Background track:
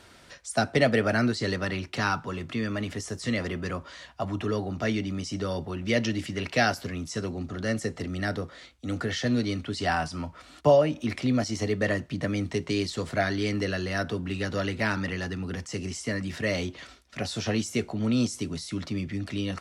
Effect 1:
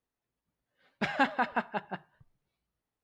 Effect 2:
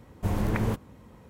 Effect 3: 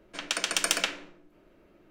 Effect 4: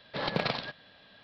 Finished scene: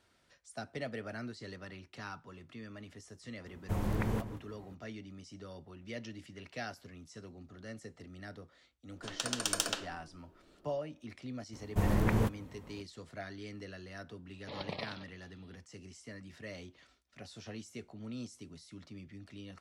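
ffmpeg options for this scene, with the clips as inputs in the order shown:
ffmpeg -i bed.wav -i cue0.wav -i cue1.wav -i cue2.wav -i cue3.wav -filter_complex "[2:a]asplit=2[link_01][link_02];[0:a]volume=-18dB[link_03];[link_01]asplit=2[link_04][link_05];[link_05]adelay=169.1,volume=-12dB,highshelf=frequency=4000:gain=-3.8[link_06];[link_04][link_06]amix=inputs=2:normalize=0[link_07];[3:a]equalizer=frequency=2200:width=3.1:gain=-14.5[link_08];[4:a]asuperstop=centerf=1500:order=4:qfactor=2.3[link_09];[link_07]atrim=end=1.29,asetpts=PTS-STARTPTS,volume=-6.5dB,afade=type=in:duration=0.004:curve=hsin,afade=type=out:start_time=1.286:duration=0.004:curve=hsin,adelay=3460[link_10];[link_08]atrim=end=1.9,asetpts=PTS-STARTPTS,volume=-5dB,afade=type=in:duration=0.004:curve=hsin,afade=type=out:start_time=1.896:duration=0.004:curve=hsin,adelay=8890[link_11];[link_02]atrim=end=1.29,asetpts=PTS-STARTPTS,volume=-2dB,afade=type=in:duration=0.004:curve=hsin,afade=type=out:start_time=1.286:duration=0.004:curve=hsin,adelay=11530[link_12];[link_09]atrim=end=1.23,asetpts=PTS-STARTPTS,volume=-10.5dB,afade=type=in:duration=0.004:curve=hsin,afade=type=out:start_time=1.226:duration=0.004:curve=hsin,adelay=14330[link_13];[link_03][link_10][link_11][link_12][link_13]amix=inputs=5:normalize=0" out.wav

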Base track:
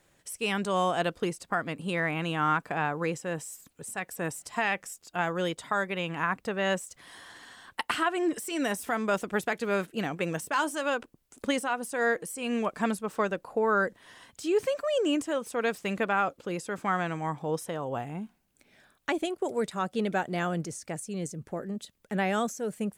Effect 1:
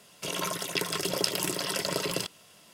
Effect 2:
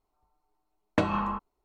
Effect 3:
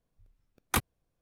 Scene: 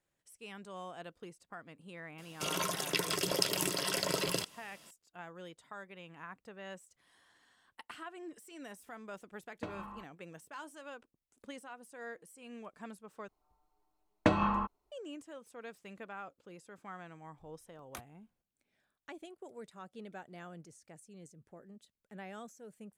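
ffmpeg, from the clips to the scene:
ffmpeg -i bed.wav -i cue0.wav -i cue1.wav -i cue2.wav -filter_complex "[2:a]asplit=2[link_01][link_02];[0:a]volume=-19dB[link_03];[3:a]acompressor=threshold=-50dB:ratio=2.5:attack=17:release=168:knee=1:detection=peak[link_04];[link_03]asplit=2[link_05][link_06];[link_05]atrim=end=13.284[link_07];[link_02]atrim=end=1.64,asetpts=PTS-STARTPTS,volume=-1.5dB[link_08];[link_06]atrim=start=14.916[link_09];[1:a]atrim=end=2.73,asetpts=PTS-STARTPTS,volume=-3dB,afade=type=in:duration=0.004:curve=hsin,afade=type=out:start_time=2.726:duration=0.004:curve=hsin,adelay=2180[link_10];[link_01]atrim=end=1.64,asetpts=PTS-STARTPTS,volume=-17.5dB,afade=type=in:duration=0.004:curve=hsin,afade=type=out:start_time=1.636:duration=0.004:curve=hsin,adelay=8650[link_11];[link_04]atrim=end=1.21,asetpts=PTS-STARTPTS,volume=-6dB,afade=type=in:duration=0.004:curve=hsin,afade=type=out:start_time=1.206:duration=0.004:curve=hsin,adelay=17210[link_12];[link_07][link_08]acrossfade=duration=0.004:curve1=hsin:curve2=hsin[link_13];[link_13][link_09]acrossfade=duration=0.004:curve1=hsin:curve2=hsin[link_14];[link_14][link_10][link_11][link_12]amix=inputs=4:normalize=0" out.wav

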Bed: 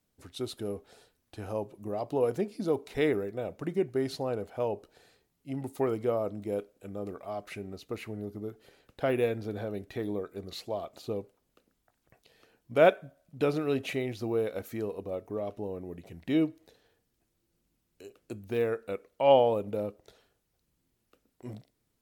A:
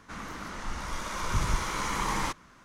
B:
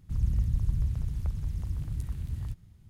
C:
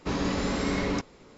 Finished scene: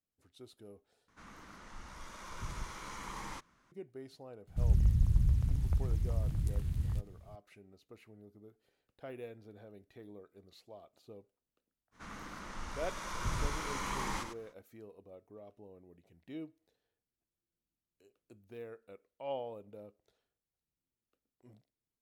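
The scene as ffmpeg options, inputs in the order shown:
ffmpeg -i bed.wav -i cue0.wav -i cue1.wav -filter_complex "[1:a]asplit=2[link_01][link_02];[0:a]volume=-18dB[link_03];[link_02]aecho=1:1:99:0.422[link_04];[link_03]asplit=2[link_05][link_06];[link_05]atrim=end=1.084[link_07];[link_01]atrim=end=2.64,asetpts=PTS-STARTPTS,volume=-14dB[link_08];[link_06]atrim=start=3.716[link_09];[2:a]atrim=end=2.89,asetpts=PTS-STARTPTS,afade=type=in:duration=0.004:curve=hsin,afade=type=out:start_time=2.886:duration=0.004:curve=hsin,adelay=4470[link_10];[link_04]atrim=end=2.64,asetpts=PTS-STARTPTS,volume=-8dB,afade=type=in:duration=0.05,afade=type=out:start_time=2.59:duration=0.05,adelay=11910[link_11];[link_07][link_08]acrossfade=duration=0.004:curve1=hsin:curve2=hsin[link_12];[link_12][link_09]acrossfade=duration=0.004:curve1=hsin:curve2=hsin[link_13];[link_13][link_10][link_11]amix=inputs=3:normalize=0" out.wav

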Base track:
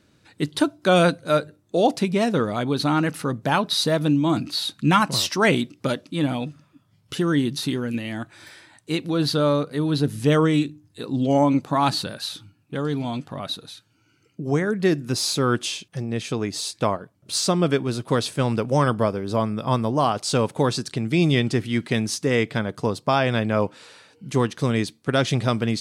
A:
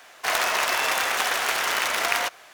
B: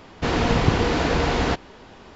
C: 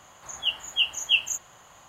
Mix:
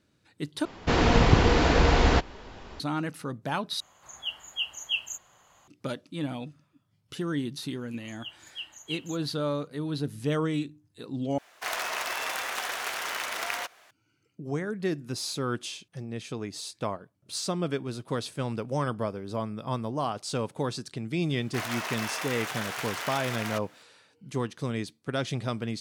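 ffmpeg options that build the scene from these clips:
ffmpeg -i bed.wav -i cue0.wav -i cue1.wav -i cue2.wav -filter_complex "[3:a]asplit=2[link_01][link_02];[1:a]asplit=2[link_03][link_04];[0:a]volume=-9.5dB[link_05];[2:a]asubboost=boost=3.5:cutoff=97[link_06];[link_04]alimiter=limit=-11dB:level=0:latency=1:release=71[link_07];[link_05]asplit=4[link_08][link_09][link_10][link_11];[link_08]atrim=end=0.654[link_12];[link_06]atrim=end=2.15,asetpts=PTS-STARTPTS,volume=-0.5dB[link_13];[link_09]atrim=start=2.796:end=3.804[link_14];[link_01]atrim=end=1.88,asetpts=PTS-STARTPTS,volume=-7.5dB[link_15];[link_10]atrim=start=5.676:end=11.384[link_16];[link_03]atrim=end=2.53,asetpts=PTS-STARTPTS,volume=-8.5dB[link_17];[link_11]atrim=start=13.906[link_18];[link_02]atrim=end=1.88,asetpts=PTS-STARTPTS,volume=-15.5dB,afade=type=in:duration=0.004:curve=hsin,afade=type=out:start_time=1.876:duration=0.004:curve=hsin,adelay=7790[link_19];[link_07]atrim=end=2.53,asetpts=PTS-STARTPTS,volume=-10.5dB,afade=type=in:duration=0.004:curve=hsin,afade=type=out:start_time=2.526:duration=0.004:curve=hsin,adelay=21300[link_20];[link_12][link_13]acrossfade=duration=0.004:curve1=hsin:curve2=hsin[link_21];[link_21][link_14]acrossfade=duration=0.004:curve1=hsin:curve2=hsin[link_22];[link_22][link_15]acrossfade=duration=0.004:curve1=hsin:curve2=hsin[link_23];[link_23][link_16]acrossfade=duration=0.004:curve1=hsin:curve2=hsin[link_24];[link_24][link_17]acrossfade=duration=0.004:curve1=hsin:curve2=hsin[link_25];[link_25][link_18]acrossfade=duration=0.004:curve1=hsin:curve2=hsin[link_26];[link_26][link_19][link_20]amix=inputs=3:normalize=0" out.wav

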